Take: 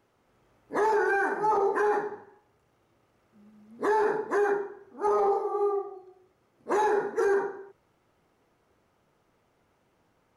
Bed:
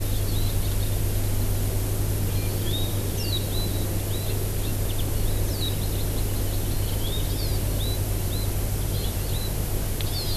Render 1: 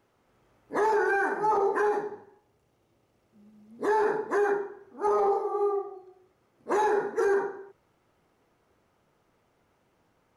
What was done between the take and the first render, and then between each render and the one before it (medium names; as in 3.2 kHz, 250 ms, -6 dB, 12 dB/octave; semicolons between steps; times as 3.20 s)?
1.89–3.88 s: peaking EQ 1.4 kHz -6 dB 1.4 oct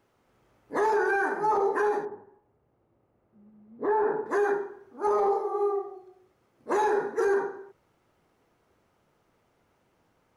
2.05–4.26 s: low-pass 1.4 kHz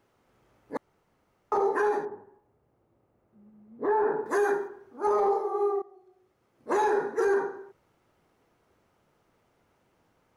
0.77–1.52 s: room tone; 4.19–4.68 s: treble shelf 6.2 kHz +11.5 dB; 5.82–6.70 s: fade in, from -14 dB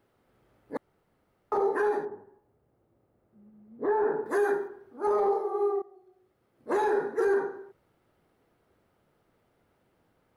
fifteen-band graphic EQ 1 kHz -4 dB, 2.5 kHz -3 dB, 6.3 kHz -8 dB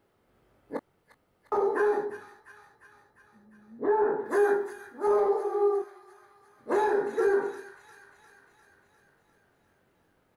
doubling 22 ms -7.5 dB; feedback echo behind a high-pass 351 ms, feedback 63%, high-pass 2.2 kHz, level -7 dB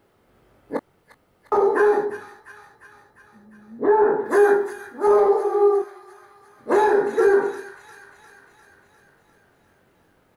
trim +8 dB